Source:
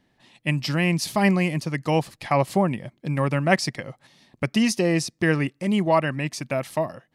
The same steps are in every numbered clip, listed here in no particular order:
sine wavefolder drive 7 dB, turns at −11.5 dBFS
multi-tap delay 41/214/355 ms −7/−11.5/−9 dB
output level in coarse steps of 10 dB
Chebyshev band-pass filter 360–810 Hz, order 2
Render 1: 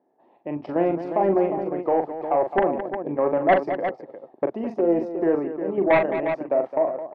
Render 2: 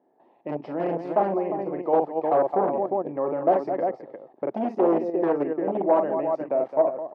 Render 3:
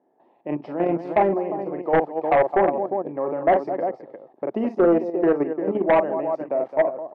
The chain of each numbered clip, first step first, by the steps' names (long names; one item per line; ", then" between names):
Chebyshev band-pass filter, then output level in coarse steps, then sine wavefolder, then multi-tap delay
multi-tap delay, then output level in coarse steps, then sine wavefolder, then Chebyshev band-pass filter
multi-tap delay, then output level in coarse steps, then Chebyshev band-pass filter, then sine wavefolder